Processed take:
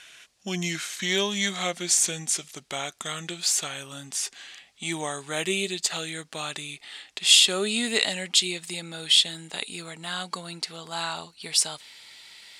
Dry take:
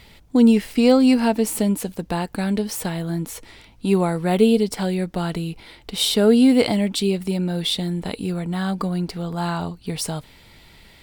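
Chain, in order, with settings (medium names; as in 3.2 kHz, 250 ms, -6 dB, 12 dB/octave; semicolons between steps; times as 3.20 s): gliding tape speed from 75% -> 100%; frequency weighting ITU-R 468; trim -4.5 dB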